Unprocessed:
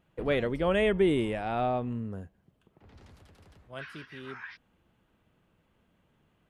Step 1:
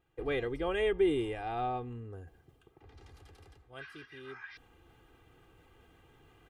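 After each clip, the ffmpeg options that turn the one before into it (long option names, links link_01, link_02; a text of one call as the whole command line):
ffmpeg -i in.wav -af "aecho=1:1:2.5:0.75,areverse,acompressor=mode=upward:threshold=-41dB:ratio=2.5,areverse,volume=-7dB" out.wav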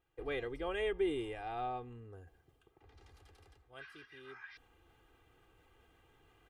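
ffmpeg -i in.wav -af "equalizer=frequency=170:width_type=o:width=1.9:gain=-5.5,volume=-4dB" out.wav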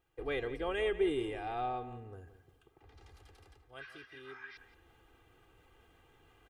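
ffmpeg -i in.wav -filter_complex "[0:a]asplit=2[link_01][link_02];[link_02]adelay=173,lowpass=frequency=4000:poles=1,volume=-13dB,asplit=2[link_03][link_04];[link_04]adelay=173,lowpass=frequency=4000:poles=1,volume=0.27,asplit=2[link_05][link_06];[link_06]adelay=173,lowpass=frequency=4000:poles=1,volume=0.27[link_07];[link_01][link_03][link_05][link_07]amix=inputs=4:normalize=0,volume=2.5dB" out.wav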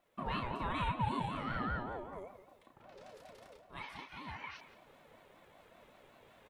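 ffmpeg -i in.wav -filter_complex "[0:a]acompressor=threshold=-40dB:ratio=2,asplit=2[link_01][link_02];[link_02]adelay=33,volume=-4.5dB[link_03];[link_01][link_03]amix=inputs=2:normalize=0,aeval=exprs='val(0)*sin(2*PI*580*n/s+580*0.2/5.2*sin(2*PI*5.2*n/s))':channel_layout=same,volume=4.5dB" out.wav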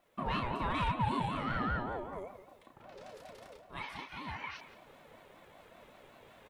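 ffmpeg -i in.wav -af "asoftclip=type=tanh:threshold=-26dB,volume=4dB" out.wav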